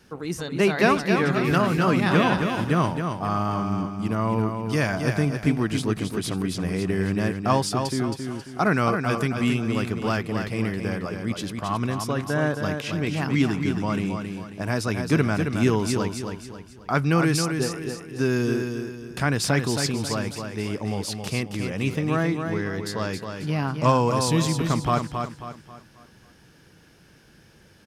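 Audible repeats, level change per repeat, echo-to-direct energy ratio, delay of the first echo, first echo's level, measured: 4, -8.0 dB, -5.5 dB, 270 ms, -6.0 dB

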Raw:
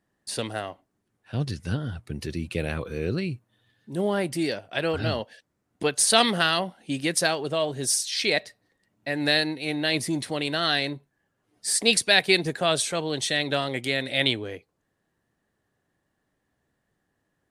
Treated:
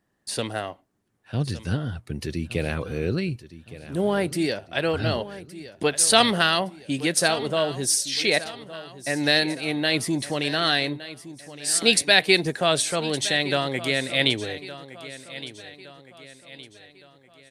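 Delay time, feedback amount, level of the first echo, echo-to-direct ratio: 1165 ms, 45%, -15.5 dB, -14.5 dB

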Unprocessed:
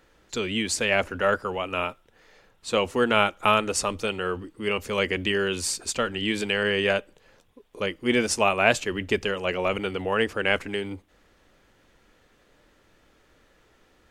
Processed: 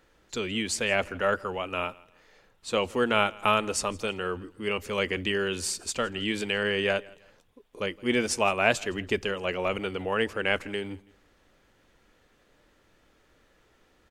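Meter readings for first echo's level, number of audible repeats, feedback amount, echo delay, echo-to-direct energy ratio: -23.5 dB, 2, 32%, 164 ms, -23.0 dB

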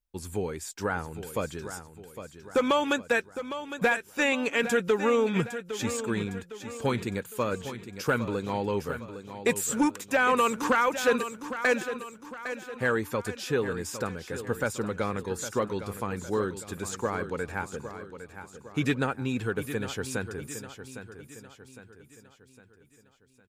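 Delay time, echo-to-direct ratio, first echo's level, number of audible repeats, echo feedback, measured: 808 ms, -10.0 dB, -11.0 dB, 4, 46%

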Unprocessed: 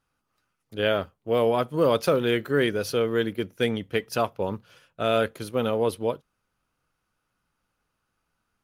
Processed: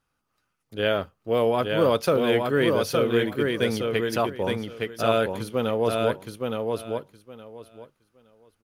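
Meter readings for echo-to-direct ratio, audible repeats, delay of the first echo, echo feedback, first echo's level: -3.5 dB, 3, 867 ms, 18%, -3.5 dB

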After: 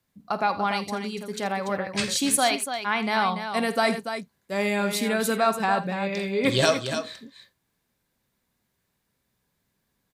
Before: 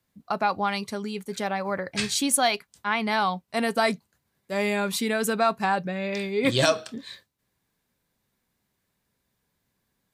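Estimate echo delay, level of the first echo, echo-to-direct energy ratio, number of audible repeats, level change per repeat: 50 ms, -15.5 dB, -7.0 dB, 3, no regular repeats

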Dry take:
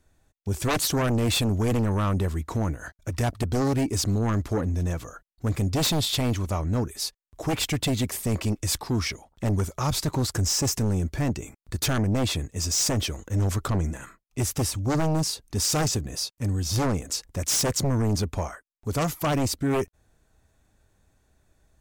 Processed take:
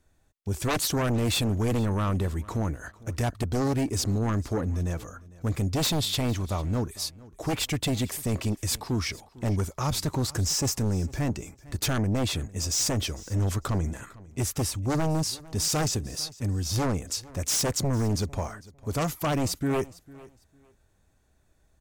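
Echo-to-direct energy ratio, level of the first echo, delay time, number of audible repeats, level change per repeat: -21.0 dB, -21.0 dB, 452 ms, 2, -13.0 dB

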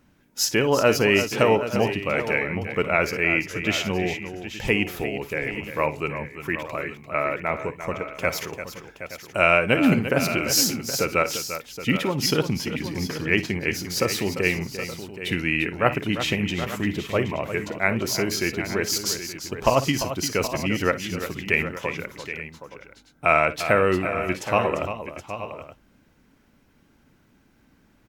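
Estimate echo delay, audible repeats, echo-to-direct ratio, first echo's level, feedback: 53 ms, 4, -6.5 dB, -16.5 dB, no regular repeats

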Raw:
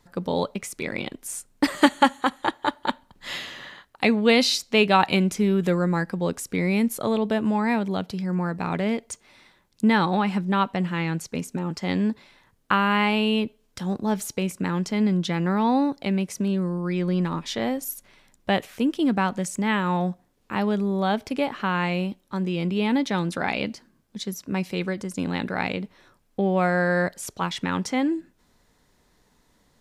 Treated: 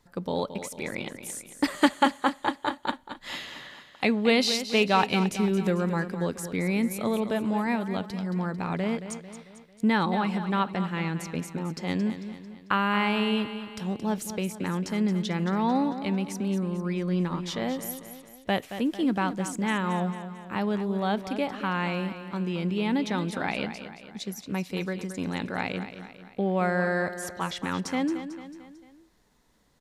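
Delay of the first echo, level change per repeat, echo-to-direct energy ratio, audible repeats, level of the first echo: 223 ms, -6.0 dB, -9.5 dB, 4, -11.0 dB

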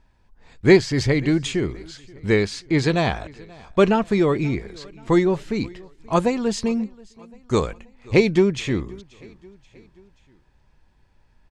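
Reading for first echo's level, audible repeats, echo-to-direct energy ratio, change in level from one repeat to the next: -24.0 dB, 2, -22.5 dB, -5.5 dB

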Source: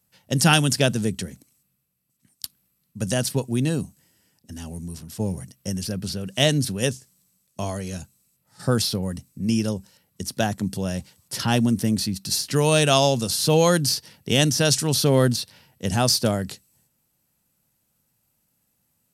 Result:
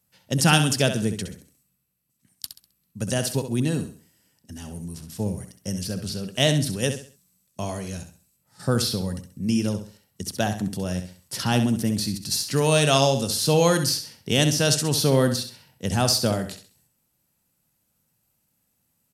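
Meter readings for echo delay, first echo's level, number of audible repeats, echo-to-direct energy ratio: 66 ms, -9.0 dB, 3, -8.5 dB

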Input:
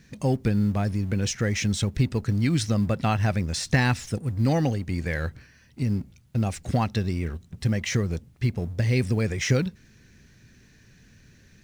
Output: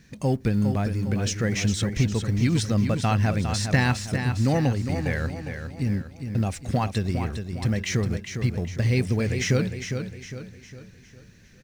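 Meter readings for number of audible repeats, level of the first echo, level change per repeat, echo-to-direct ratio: 4, -7.5 dB, -7.0 dB, -6.5 dB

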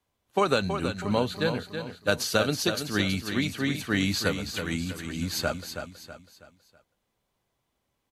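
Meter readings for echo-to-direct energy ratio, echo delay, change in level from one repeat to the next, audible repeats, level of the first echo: -7.5 dB, 324 ms, -8.0 dB, 4, -8.0 dB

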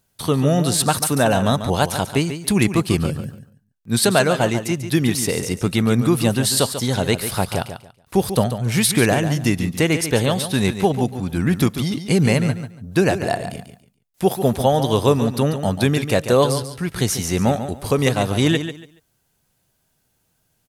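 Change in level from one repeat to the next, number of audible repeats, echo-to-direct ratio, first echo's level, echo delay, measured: -13.0 dB, 2, -10.0 dB, -10.0 dB, 142 ms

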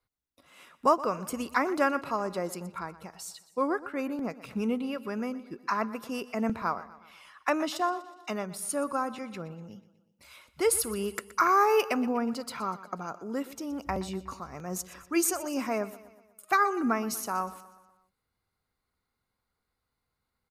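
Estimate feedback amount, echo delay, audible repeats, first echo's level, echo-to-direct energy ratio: 53%, 122 ms, 4, -17.0 dB, -15.5 dB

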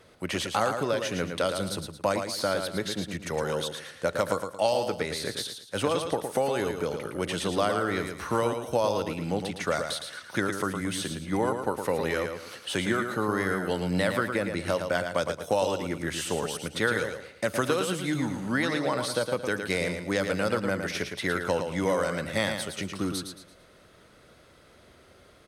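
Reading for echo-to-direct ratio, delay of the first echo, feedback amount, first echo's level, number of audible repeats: -6.0 dB, 112 ms, 34%, -6.5 dB, 4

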